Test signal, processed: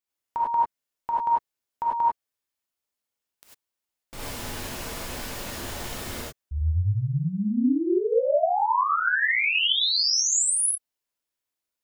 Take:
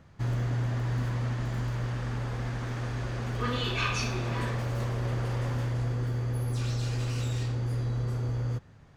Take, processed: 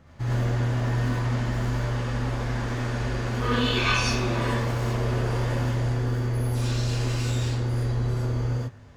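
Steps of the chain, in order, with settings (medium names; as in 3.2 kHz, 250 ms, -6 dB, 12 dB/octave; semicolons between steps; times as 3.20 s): gated-style reverb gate 120 ms rising, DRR -5.5 dB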